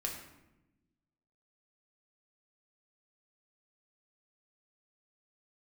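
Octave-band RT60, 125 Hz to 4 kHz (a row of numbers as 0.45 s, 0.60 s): 1.6 s, 1.6 s, 1.1 s, 0.85 s, 0.80 s, 0.60 s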